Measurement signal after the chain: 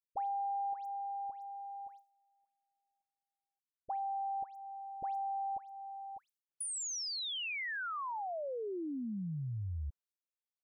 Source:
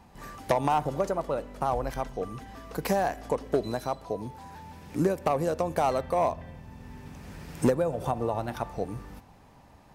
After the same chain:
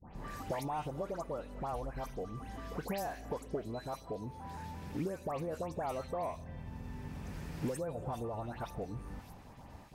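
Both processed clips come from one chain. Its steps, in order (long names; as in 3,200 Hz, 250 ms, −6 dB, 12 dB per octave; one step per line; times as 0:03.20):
noise gate with hold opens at −45 dBFS
low-shelf EQ 190 Hz +4 dB
downward compressor 2.5 to 1, threshold −42 dBFS
all-pass dispersion highs, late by 135 ms, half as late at 2,200 Hz
level +1 dB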